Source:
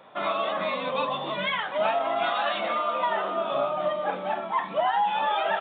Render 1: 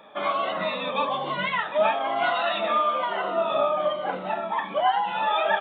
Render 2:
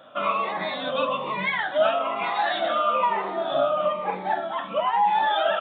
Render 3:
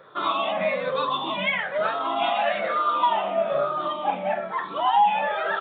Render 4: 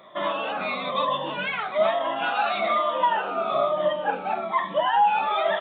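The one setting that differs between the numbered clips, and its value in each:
rippled gain that drifts along the octave scale, ripples per octave: 2, 0.84, 0.57, 1.2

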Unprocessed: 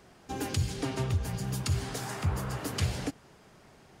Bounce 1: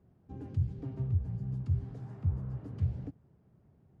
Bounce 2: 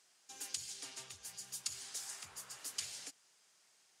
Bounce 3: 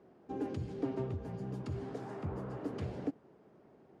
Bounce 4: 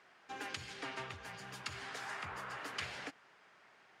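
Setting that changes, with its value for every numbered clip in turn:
resonant band-pass, frequency: 100, 7,600, 350, 1,800 Hertz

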